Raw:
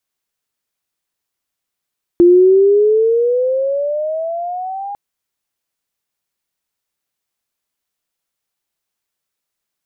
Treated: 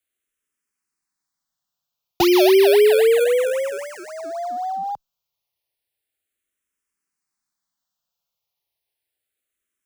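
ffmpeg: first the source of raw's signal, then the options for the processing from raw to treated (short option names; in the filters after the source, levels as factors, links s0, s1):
-f lavfi -i "aevalsrc='pow(10,(-4-18.5*t/2.75)/20)*sin(2*PI*344*2.75/(15*log(2)/12)*(exp(15*log(2)/12*t/2.75)-1))':d=2.75:s=44100"
-filter_complex "[0:a]acrossover=split=120|450[s0][s1][s2];[s1]acrusher=samples=31:mix=1:aa=0.000001:lfo=1:lforange=31:lforate=3.8[s3];[s0][s3][s2]amix=inputs=3:normalize=0,asplit=2[s4][s5];[s5]afreqshift=-0.32[s6];[s4][s6]amix=inputs=2:normalize=1"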